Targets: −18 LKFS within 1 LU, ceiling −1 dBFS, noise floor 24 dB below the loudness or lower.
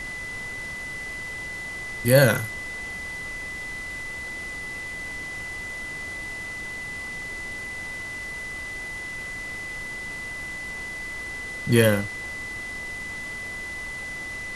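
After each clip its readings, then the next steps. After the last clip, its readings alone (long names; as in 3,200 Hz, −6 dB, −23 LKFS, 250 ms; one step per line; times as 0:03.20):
interfering tone 2,000 Hz; level of the tone −32 dBFS; background noise floor −34 dBFS; target noise floor −53 dBFS; integrated loudness −28.5 LKFS; sample peak −2.5 dBFS; target loudness −18.0 LKFS
→ notch filter 2,000 Hz, Q 30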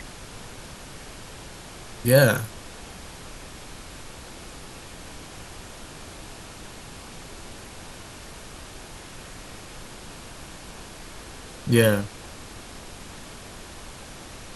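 interfering tone none found; background noise floor −43 dBFS; target noise floor −46 dBFS
→ noise reduction from a noise print 6 dB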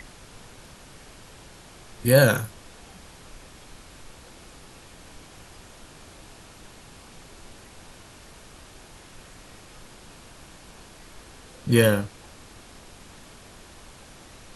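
background noise floor −48 dBFS; integrated loudness −21.5 LKFS; sample peak −3.0 dBFS; target loudness −18.0 LKFS
→ level +3.5 dB
brickwall limiter −1 dBFS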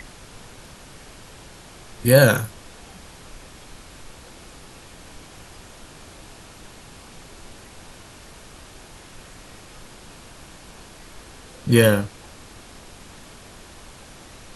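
integrated loudness −18.0 LKFS; sample peak −1.0 dBFS; background noise floor −45 dBFS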